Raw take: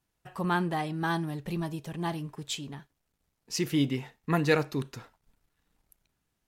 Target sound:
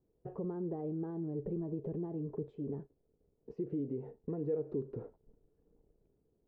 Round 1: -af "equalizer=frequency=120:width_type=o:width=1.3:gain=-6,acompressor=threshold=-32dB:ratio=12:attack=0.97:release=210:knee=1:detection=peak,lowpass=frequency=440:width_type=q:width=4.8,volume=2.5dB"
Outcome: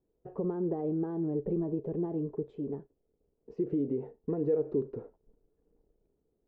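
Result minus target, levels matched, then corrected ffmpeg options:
downward compressor: peak gain reduction −6.5 dB; 125 Hz band −3.0 dB
-af "acompressor=threshold=-38.5dB:ratio=12:attack=0.97:release=210:knee=1:detection=peak,lowpass=frequency=440:width_type=q:width=4.8,volume=2.5dB"

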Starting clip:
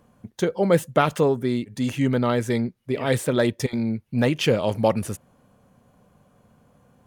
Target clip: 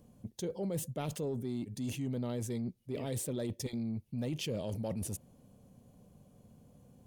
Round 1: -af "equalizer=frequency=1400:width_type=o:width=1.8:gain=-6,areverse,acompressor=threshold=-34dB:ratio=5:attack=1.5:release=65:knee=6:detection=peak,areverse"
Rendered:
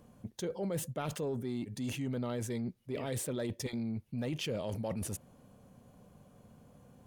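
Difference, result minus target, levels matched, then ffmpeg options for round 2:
1,000 Hz band +3.0 dB
-af "equalizer=frequency=1400:width_type=o:width=1.8:gain=-16.5,areverse,acompressor=threshold=-34dB:ratio=5:attack=1.5:release=65:knee=6:detection=peak,areverse"

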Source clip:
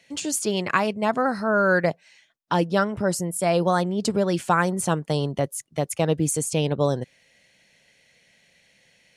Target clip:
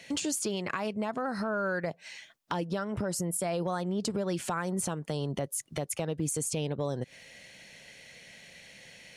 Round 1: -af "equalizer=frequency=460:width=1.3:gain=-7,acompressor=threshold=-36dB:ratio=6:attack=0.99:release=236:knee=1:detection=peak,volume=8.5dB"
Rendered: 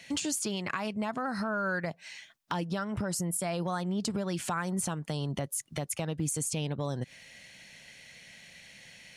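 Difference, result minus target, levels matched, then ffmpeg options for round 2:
500 Hz band −3.0 dB
-af "acompressor=threshold=-36dB:ratio=6:attack=0.99:release=236:knee=1:detection=peak,volume=8.5dB"

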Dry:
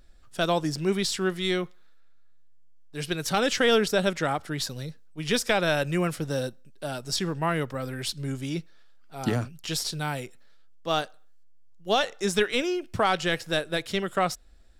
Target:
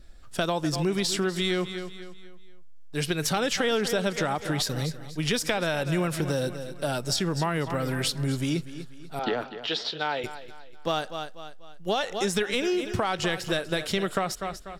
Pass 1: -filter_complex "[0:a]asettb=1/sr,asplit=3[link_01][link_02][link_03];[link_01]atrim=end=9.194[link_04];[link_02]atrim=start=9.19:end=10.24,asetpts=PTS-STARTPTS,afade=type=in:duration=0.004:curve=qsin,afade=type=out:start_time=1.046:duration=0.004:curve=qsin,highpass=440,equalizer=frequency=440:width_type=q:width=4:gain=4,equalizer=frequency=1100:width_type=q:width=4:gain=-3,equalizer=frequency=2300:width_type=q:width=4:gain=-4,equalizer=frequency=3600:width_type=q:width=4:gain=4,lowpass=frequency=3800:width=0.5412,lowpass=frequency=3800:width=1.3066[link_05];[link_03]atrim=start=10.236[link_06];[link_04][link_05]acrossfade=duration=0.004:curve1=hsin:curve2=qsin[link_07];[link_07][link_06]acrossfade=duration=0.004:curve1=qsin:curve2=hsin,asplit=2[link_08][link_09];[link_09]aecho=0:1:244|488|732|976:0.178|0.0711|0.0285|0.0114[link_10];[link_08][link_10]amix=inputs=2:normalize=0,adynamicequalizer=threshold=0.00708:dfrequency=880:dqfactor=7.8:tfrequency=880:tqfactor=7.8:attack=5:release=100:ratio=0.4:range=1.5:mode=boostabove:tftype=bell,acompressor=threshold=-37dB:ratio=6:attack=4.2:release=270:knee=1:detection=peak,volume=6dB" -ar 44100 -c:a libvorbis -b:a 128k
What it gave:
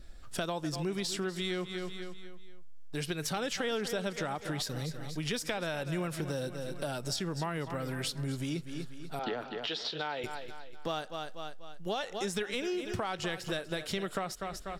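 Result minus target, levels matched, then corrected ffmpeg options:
downward compressor: peak gain reduction +8 dB
-filter_complex "[0:a]asettb=1/sr,asplit=3[link_01][link_02][link_03];[link_01]atrim=end=9.194[link_04];[link_02]atrim=start=9.19:end=10.24,asetpts=PTS-STARTPTS,afade=type=in:duration=0.004:curve=qsin,afade=type=out:start_time=1.046:duration=0.004:curve=qsin,highpass=440,equalizer=frequency=440:width_type=q:width=4:gain=4,equalizer=frequency=1100:width_type=q:width=4:gain=-3,equalizer=frequency=2300:width_type=q:width=4:gain=-4,equalizer=frequency=3600:width_type=q:width=4:gain=4,lowpass=frequency=3800:width=0.5412,lowpass=frequency=3800:width=1.3066[link_05];[link_03]atrim=start=10.236[link_06];[link_04][link_05]acrossfade=duration=0.004:curve1=hsin:curve2=qsin[link_07];[link_07][link_06]acrossfade=duration=0.004:curve1=qsin:curve2=hsin,asplit=2[link_08][link_09];[link_09]aecho=0:1:244|488|732|976:0.178|0.0711|0.0285|0.0114[link_10];[link_08][link_10]amix=inputs=2:normalize=0,adynamicequalizer=threshold=0.00708:dfrequency=880:dqfactor=7.8:tfrequency=880:tqfactor=7.8:attack=5:release=100:ratio=0.4:range=1.5:mode=boostabove:tftype=bell,acompressor=threshold=-27.5dB:ratio=6:attack=4.2:release=270:knee=1:detection=peak,volume=6dB" -ar 44100 -c:a libvorbis -b:a 128k

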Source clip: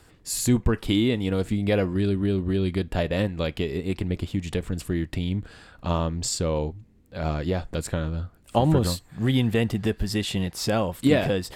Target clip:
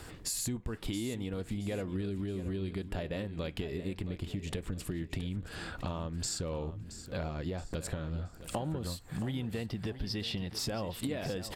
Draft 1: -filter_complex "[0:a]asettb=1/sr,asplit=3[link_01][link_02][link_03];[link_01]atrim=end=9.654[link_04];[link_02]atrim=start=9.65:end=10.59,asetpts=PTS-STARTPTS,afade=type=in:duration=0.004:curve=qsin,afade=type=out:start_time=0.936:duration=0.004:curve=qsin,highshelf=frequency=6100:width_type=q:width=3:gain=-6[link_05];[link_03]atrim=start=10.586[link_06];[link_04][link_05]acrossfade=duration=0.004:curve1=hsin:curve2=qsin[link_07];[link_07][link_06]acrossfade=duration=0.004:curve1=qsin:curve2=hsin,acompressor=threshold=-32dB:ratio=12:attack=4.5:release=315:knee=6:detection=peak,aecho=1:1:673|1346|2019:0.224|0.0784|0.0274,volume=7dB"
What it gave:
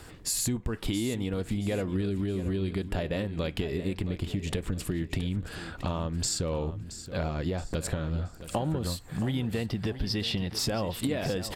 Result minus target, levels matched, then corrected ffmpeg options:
downward compressor: peak gain reduction −6 dB
-filter_complex "[0:a]asettb=1/sr,asplit=3[link_01][link_02][link_03];[link_01]atrim=end=9.654[link_04];[link_02]atrim=start=9.65:end=10.59,asetpts=PTS-STARTPTS,afade=type=in:duration=0.004:curve=qsin,afade=type=out:start_time=0.936:duration=0.004:curve=qsin,highshelf=frequency=6100:width_type=q:width=3:gain=-6[link_05];[link_03]atrim=start=10.586[link_06];[link_04][link_05]acrossfade=duration=0.004:curve1=hsin:curve2=qsin[link_07];[link_07][link_06]acrossfade=duration=0.004:curve1=qsin:curve2=hsin,acompressor=threshold=-38.5dB:ratio=12:attack=4.5:release=315:knee=6:detection=peak,aecho=1:1:673|1346|2019:0.224|0.0784|0.0274,volume=7dB"

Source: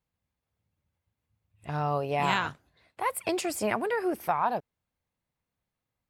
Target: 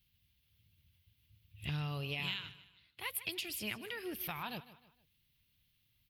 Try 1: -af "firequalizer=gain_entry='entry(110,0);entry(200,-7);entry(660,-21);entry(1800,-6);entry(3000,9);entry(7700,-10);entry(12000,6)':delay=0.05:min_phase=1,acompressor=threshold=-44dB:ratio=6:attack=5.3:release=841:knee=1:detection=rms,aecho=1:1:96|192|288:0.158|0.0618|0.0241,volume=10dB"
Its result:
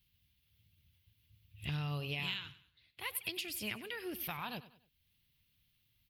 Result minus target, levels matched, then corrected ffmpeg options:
echo 57 ms early
-af "firequalizer=gain_entry='entry(110,0);entry(200,-7);entry(660,-21);entry(1800,-6);entry(3000,9);entry(7700,-10);entry(12000,6)':delay=0.05:min_phase=1,acompressor=threshold=-44dB:ratio=6:attack=5.3:release=841:knee=1:detection=rms,aecho=1:1:153|306|459:0.158|0.0618|0.0241,volume=10dB"

